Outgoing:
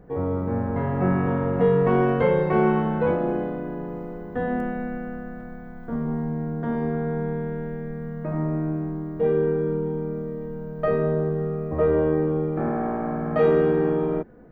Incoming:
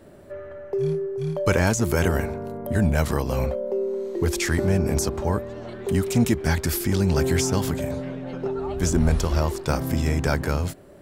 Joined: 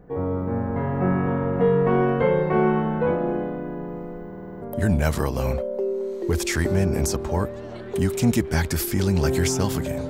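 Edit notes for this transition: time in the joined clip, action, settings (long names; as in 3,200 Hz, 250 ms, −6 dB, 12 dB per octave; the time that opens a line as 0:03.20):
outgoing
0:04.27: stutter in place 0.05 s, 7 plays
0:04.62: continue with incoming from 0:02.55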